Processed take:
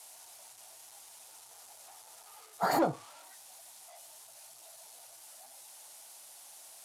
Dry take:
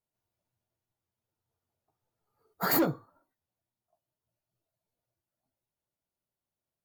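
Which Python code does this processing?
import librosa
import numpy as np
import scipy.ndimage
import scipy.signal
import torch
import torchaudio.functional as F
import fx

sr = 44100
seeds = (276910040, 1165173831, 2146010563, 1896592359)

y = x + 0.5 * 10.0 ** (-33.0 / 20.0) * np.diff(np.sign(x), prepend=np.sign(x[:1]))
y = scipy.signal.sosfilt(scipy.signal.butter(4, 11000.0, 'lowpass', fs=sr, output='sos'), y)
y = fx.peak_eq(y, sr, hz=770.0, db=13.5, octaves=0.91)
y = F.gain(torch.from_numpy(y), -5.5).numpy()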